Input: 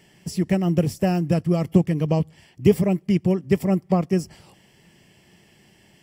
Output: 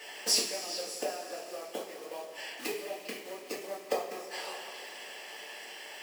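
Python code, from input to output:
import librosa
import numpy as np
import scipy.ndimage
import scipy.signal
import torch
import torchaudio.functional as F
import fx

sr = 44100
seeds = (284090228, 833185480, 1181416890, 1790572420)

p1 = fx.rider(x, sr, range_db=4, speed_s=2.0)
p2 = x + (p1 * librosa.db_to_amplitude(-1.5))
p3 = fx.high_shelf(p2, sr, hz=8000.0, db=-8.5)
p4 = fx.gate_flip(p3, sr, shuts_db=-12.0, range_db=-25)
p5 = p4 + fx.echo_stepped(p4, sr, ms=201, hz=1400.0, octaves=1.4, feedback_pct=70, wet_db=-7, dry=0)
p6 = fx.quant_companded(p5, sr, bits=6)
p7 = scipy.signal.sosfilt(scipy.signal.butter(4, 490.0, 'highpass', fs=sr, output='sos'), p6)
p8 = fx.rev_double_slope(p7, sr, seeds[0], early_s=0.37, late_s=3.6, knee_db=-16, drr_db=-6.5)
y = p8 * librosa.db_to_amplitude(1.5)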